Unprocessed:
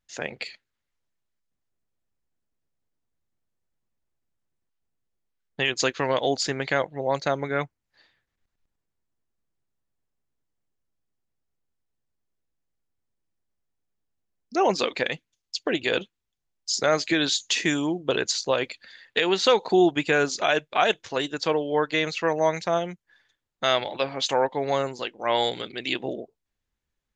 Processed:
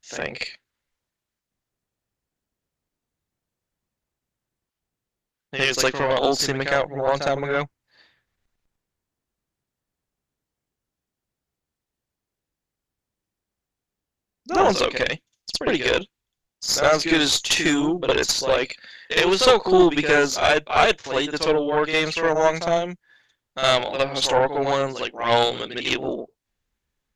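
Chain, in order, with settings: reverse echo 59 ms -8 dB; added harmonics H 4 -15 dB, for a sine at -6 dBFS; gain +4 dB

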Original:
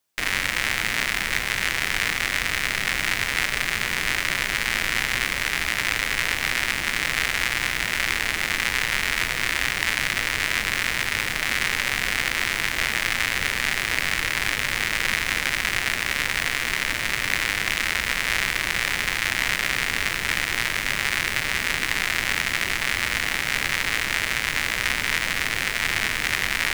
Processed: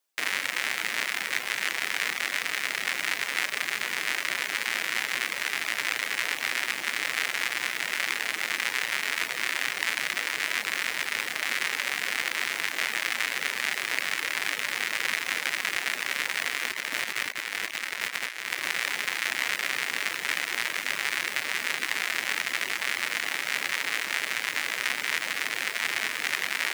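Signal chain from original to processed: HPF 310 Hz 12 dB/oct; 16.63–18.67 negative-ratio compressor -27 dBFS, ratio -0.5; reverb removal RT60 0.63 s; gain -3 dB

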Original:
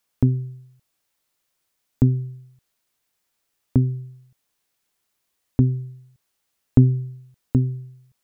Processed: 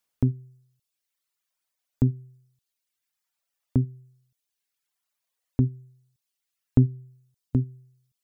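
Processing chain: reverb removal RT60 1.6 s; gain -4.5 dB

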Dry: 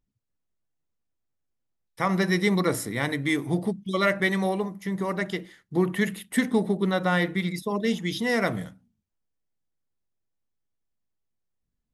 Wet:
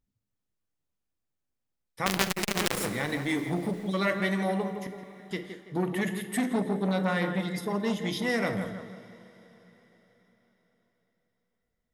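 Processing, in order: in parallel at -1 dB: limiter -18.5 dBFS, peak gain reduction 8 dB; 2.06–2.86 on the sum: companded quantiser 2-bit; 4.81–5.31 flipped gate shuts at -19 dBFS, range -27 dB; 7.29–7.92 Butterworth band-stop 2300 Hz, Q 7.5; on a send: tape echo 0.166 s, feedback 50%, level -7.5 dB, low-pass 1900 Hz; on the sum: two-slope reverb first 0.48 s, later 4.7 s, from -18 dB, DRR 9 dB; core saturation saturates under 1500 Hz; gain -7.5 dB

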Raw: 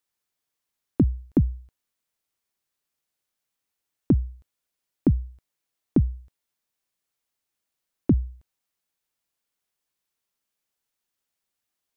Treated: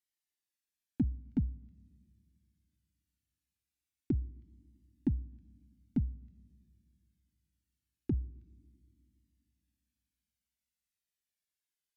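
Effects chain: band shelf 760 Hz -14.5 dB; treble ducked by the level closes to 480 Hz, closed at -19 dBFS; low shelf 190 Hz -6.5 dB; on a send at -23 dB: reverb RT60 2.1 s, pre-delay 7 ms; on the sum: cascading flanger falling 0.22 Hz; gain -3.5 dB

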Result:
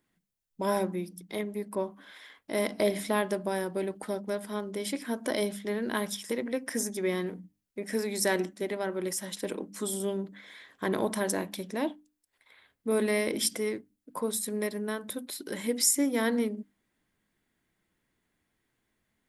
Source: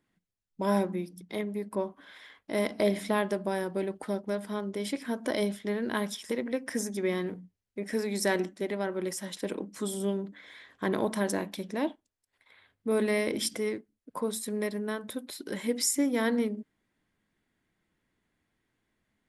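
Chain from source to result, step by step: high shelf 8500 Hz +8.5 dB; notches 50/100/150/200/250/300 Hz

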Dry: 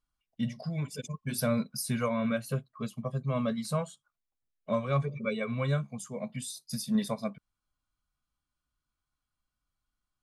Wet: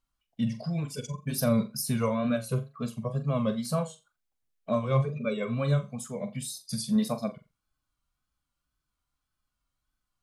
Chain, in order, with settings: flutter echo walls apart 7.3 m, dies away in 0.24 s; dynamic EQ 1900 Hz, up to -6 dB, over -52 dBFS, Q 1.3; wow and flutter 77 cents; gain +2.5 dB

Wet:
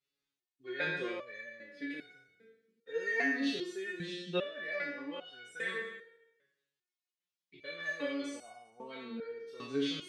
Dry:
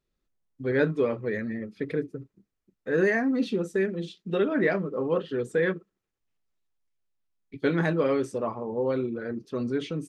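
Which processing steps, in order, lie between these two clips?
spectral trails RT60 0.96 s; weighting filter D; stepped resonator 2.5 Hz 140–740 Hz

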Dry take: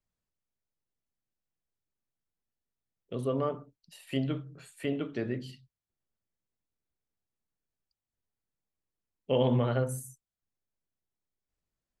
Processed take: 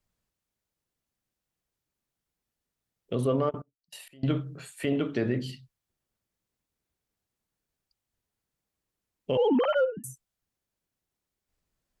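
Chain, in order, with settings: 9.37–10.04 sine-wave speech; limiter -25 dBFS, peak gain reduction 9.5 dB; 3.49–4.37 step gate "...xx..xx.x." 195 bpm -24 dB; added harmonics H 2 -38 dB, 7 -44 dB, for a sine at -25 dBFS; gain +7.5 dB

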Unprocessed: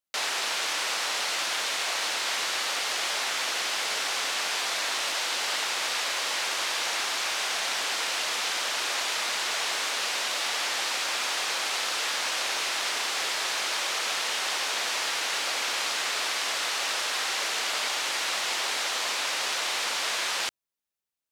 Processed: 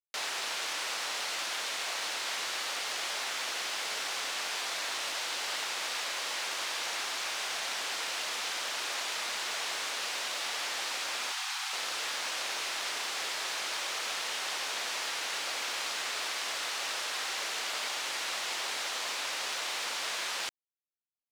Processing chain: 11.32–11.73 Chebyshev high-pass 730 Hz, order 8; companded quantiser 6-bit; gain -6 dB

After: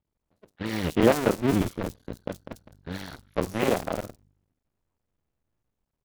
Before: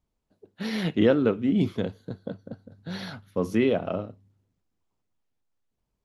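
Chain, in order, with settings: cycle switcher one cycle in 2, muted; in parallel at -10 dB: bit-crush 5-bit; on the sum: bands offset in time lows, highs 50 ms, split 4200 Hz

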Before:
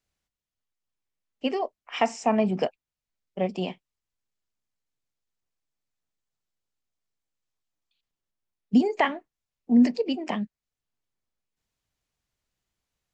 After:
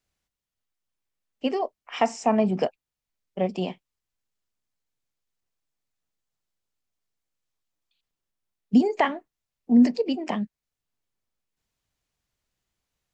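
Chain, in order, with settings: dynamic EQ 2500 Hz, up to -4 dB, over -41 dBFS, Q 1.3; gain +1.5 dB

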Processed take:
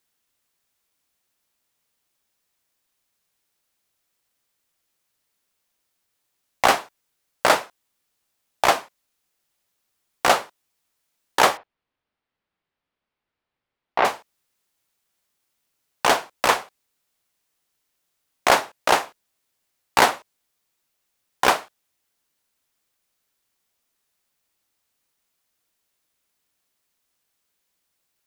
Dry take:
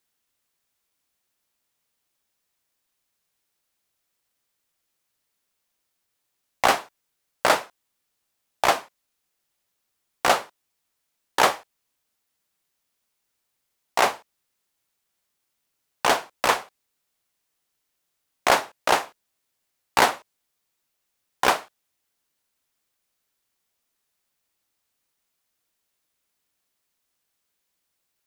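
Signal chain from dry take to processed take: 11.57–14.05 air absorption 340 m; gain +2 dB

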